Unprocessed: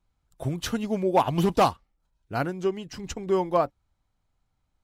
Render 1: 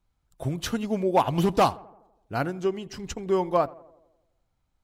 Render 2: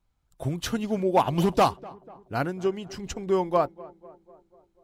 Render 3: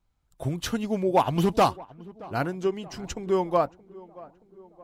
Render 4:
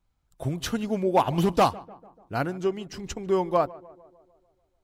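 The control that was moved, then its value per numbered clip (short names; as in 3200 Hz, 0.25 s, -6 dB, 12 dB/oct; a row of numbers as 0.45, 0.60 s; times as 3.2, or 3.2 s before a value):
tape echo, time: 84, 246, 625, 148 ms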